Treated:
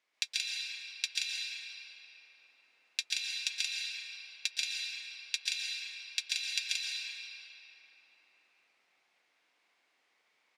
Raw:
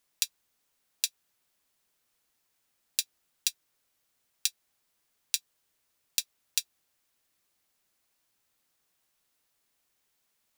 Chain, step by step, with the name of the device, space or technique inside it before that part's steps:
station announcement (band-pass filter 350–4,000 Hz; parametric band 2,200 Hz +8 dB 0.34 octaves; loudspeakers that aren't time-aligned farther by 47 metres −2 dB, 61 metres −4 dB; convolution reverb RT60 4.2 s, pre-delay 113 ms, DRR −2.5 dB)

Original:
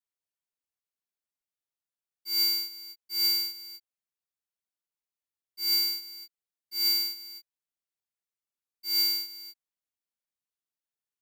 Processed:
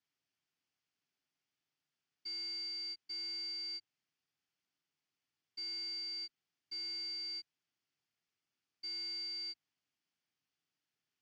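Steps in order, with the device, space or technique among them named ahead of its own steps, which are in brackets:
guitar amplifier (tube saturation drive 50 dB, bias 0.5; bass and treble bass −2 dB, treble +14 dB; loudspeaker in its box 100–4,200 Hz, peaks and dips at 100 Hz +8 dB, 150 Hz +9 dB, 280 Hz +6 dB, 540 Hz −8 dB, 1,000 Hz −4 dB, 3,900 Hz −9 dB)
level +9 dB

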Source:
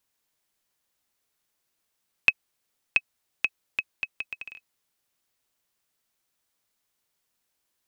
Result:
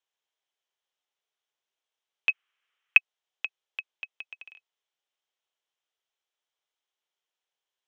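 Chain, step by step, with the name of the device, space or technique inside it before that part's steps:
phone speaker on a table (loudspeaker in its box 400–6,600 Hz, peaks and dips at 400 Hz +3 dB, 800 Hz +3 dB, 3,200 Hz +8 dB, 4,600 Hz −7 dB)
0:02.29–0:02.98: flat-topped bell 1,800 Hz +13 dB
level −8.5 dB

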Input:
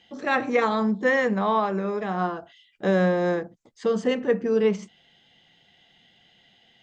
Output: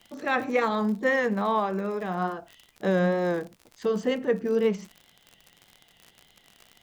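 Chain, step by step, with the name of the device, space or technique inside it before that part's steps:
vinyl LP (tape wow and flutter; surface crackle 66 per second −33 dBFS; pink noise bed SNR 42 dB)
level −2.5 dB

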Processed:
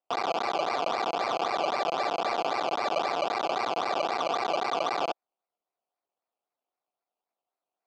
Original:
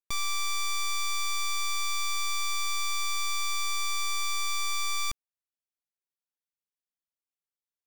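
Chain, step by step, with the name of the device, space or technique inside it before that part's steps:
circuit-bent sampling toy (sample-and-hold swept by an LFO 19×, swing 60% 3.8 Hz; loudspeaker in its box 400–5,100 Hz, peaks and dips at 720 Hz +9 dB, 1,700 Hz −8 dB, 2,500 Hz +3 dB)
level +3 dB

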